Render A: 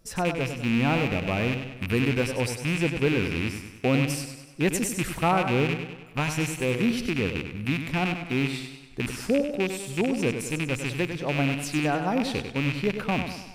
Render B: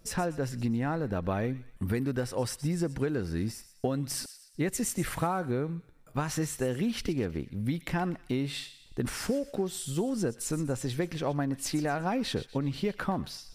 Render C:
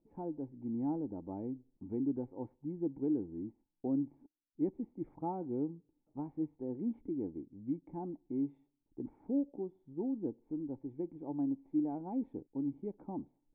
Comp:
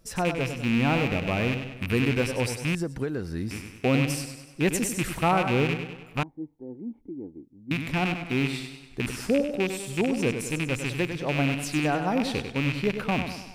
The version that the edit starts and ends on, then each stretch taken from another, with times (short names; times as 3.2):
A
2.75–3.51 from B
6.23–7.71 from C